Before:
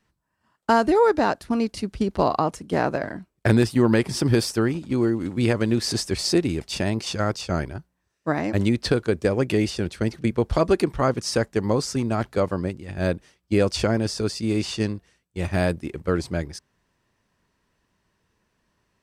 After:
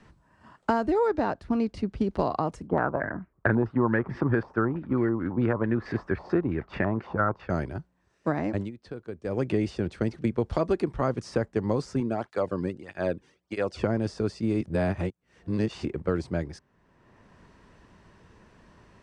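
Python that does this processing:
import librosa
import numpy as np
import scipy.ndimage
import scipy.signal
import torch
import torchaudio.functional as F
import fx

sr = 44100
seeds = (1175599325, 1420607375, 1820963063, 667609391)

y = fx.high_shelf(x, sr, hz=8500.0, db=-12.0, at=(1.08, 2.07))
y = fx.filter_held_lowpass(y, sr, hz=9.1, low_hz=930.0, high_hz=1900.0, at=(2.67, 7.5))
y = fx.flanger_cancel(y, sr, hz=1.6, depth_ms=1.7, at=(12.0, 13.84))
y = fx.edit(y, sr, fx.fade_down_up(start_s=8.47, length_s=1.02, db=-23.0, fade_s=0.24),
    fx.reverse_span(start_s=14.61, length_s=1.24), tone=tone)
y = scipy.signal.sosfilt(scipy.signal.butter(4, 9500.0, 'lowpass', fs=sr, output='sos'), y)
y = fx.high_shelf(y, sr, hz=2500.0, db=-11.0)
y = fx.band_squash(y, sr, depth_pct=70)
y = y * librosa.db_to_amplitude(-4.5)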